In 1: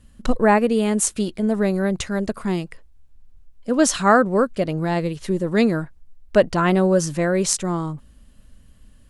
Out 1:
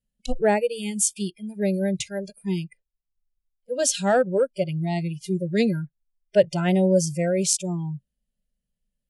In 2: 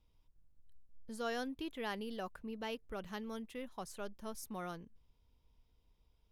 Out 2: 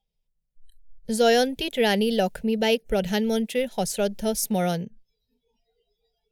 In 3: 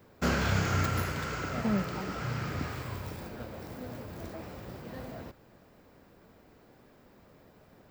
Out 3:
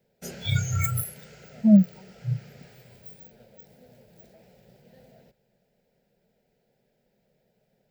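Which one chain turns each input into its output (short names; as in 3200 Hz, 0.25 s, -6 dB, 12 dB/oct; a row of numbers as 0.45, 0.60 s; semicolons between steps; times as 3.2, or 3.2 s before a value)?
spectral noise reduction 27 dB; added harmonics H 5 -35 dB, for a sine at -1 dBFS; fixed phaser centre 300 Hz, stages 6; match loudness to -24 LUFS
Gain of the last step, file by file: -1.0, +21.5, +16.5 dB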